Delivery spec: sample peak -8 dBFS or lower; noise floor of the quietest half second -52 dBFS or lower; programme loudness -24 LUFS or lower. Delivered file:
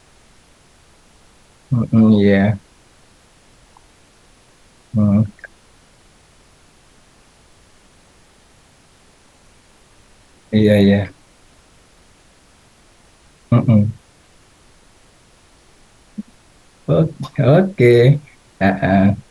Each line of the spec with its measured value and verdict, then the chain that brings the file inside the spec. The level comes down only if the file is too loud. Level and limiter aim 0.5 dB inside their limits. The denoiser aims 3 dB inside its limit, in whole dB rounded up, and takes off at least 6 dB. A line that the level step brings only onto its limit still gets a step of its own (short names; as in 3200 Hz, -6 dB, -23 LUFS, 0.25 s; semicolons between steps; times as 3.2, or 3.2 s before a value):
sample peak -2.0 dBFS: fail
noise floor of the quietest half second -51 dBFS: fail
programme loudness -15.0 LUFS: fail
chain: gain -9.5 dB